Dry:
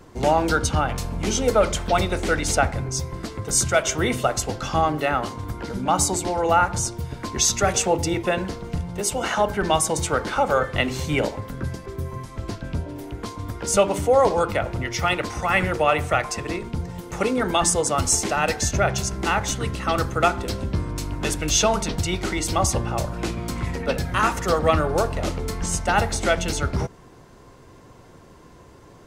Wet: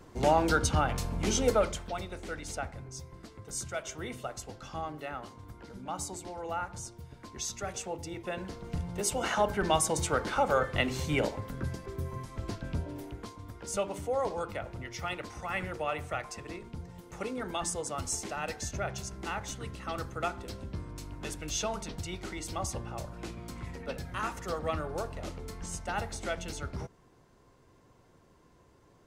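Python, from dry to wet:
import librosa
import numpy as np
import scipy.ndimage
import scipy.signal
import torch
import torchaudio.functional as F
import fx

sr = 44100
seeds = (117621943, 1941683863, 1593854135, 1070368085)

y = fx.gain(x, sr, db=fx.line((1.48, -5.5), (1.96, -17.0), (8.1, -17.0), (8.84, -6.5), (12.98, -6.5), (13.41, -14.0)))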